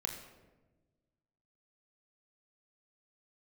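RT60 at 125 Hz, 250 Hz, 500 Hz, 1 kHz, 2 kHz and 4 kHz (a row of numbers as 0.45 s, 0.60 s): 1.9 s, 1.8 s, 1.4 s, 1.0 s, 0.90 s, 0.65 s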